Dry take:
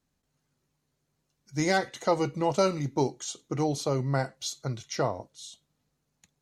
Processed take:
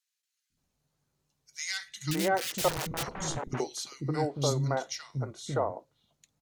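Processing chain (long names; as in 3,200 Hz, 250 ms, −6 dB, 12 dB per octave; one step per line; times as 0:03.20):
0:02.11–0:03.03: wrap-around overflow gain 27 dB
three-band delay without the direct sound highs, lows, mids 500/570 ms, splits 290/1,800 Hz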